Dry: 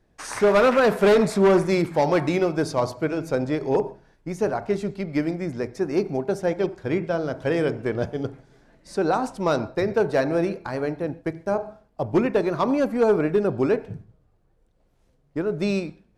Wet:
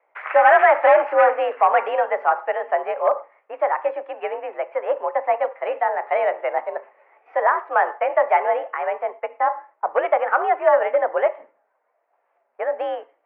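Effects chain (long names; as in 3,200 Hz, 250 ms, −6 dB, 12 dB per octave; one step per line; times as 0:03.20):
speed change +22%
single-sideband voice off tune +62 Hz 500–2,200 Hz
level +5.5 dB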